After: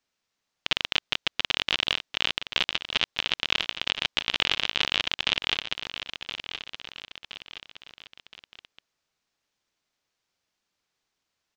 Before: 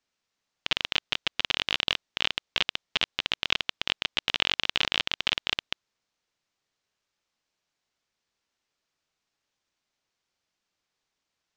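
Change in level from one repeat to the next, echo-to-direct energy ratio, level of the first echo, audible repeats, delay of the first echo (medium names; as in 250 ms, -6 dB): -6.5 dB, -9.0 dB, -10.0 dB, 3, 1020 ms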